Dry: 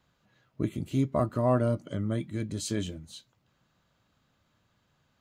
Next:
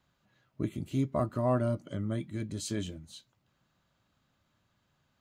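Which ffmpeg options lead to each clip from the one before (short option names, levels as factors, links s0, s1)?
-af "bandreject=f=470:w=12,volume=0.708"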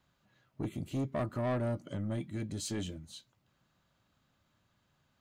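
-af "asoftclip=type=tanh:threshold=0.0376"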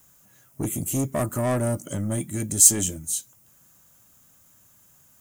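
-af "aexciter=amount=15.6:drive=3.6:freq=6200,volume=2.66"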